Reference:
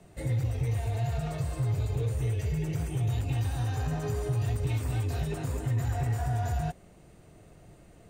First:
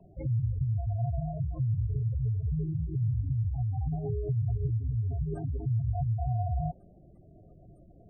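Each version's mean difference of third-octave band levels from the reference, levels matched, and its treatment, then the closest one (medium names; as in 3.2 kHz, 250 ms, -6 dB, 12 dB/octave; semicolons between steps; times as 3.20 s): 16.5 dB: band-stop 460 Hz, Q 12; spectral gate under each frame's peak -15 dB strong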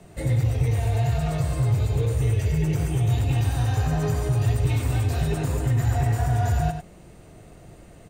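1.0 dB: on a send: delay 95 ms -7.5 dB; on the sum: trim +6.5 dB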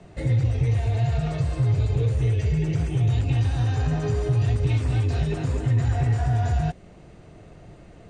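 3.5 dB: Bessel low-pass 5.1 kHz, order 4; dynamic bell 920 Hz, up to -4 dB, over -48 dBFS, Q 0.82; trim +7.5 dB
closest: second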